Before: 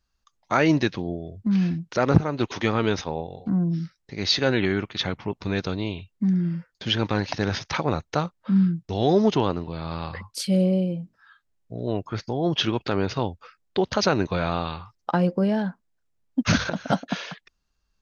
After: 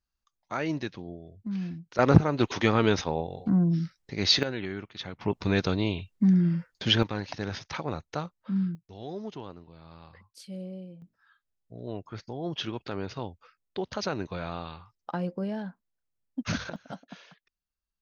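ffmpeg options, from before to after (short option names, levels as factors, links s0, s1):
-af "asetnsamples=n=441:p=0,asendcmd='1.99 volume volume 0dB;4.43 volume volume -11.5dB;5.21 volume volume 1dB;7.03 volume volume -8.5dB;8.75 volume volume -18.5dB;11.02 volume volume -10dB;16.76 volume volume -18dB',volume=0.282"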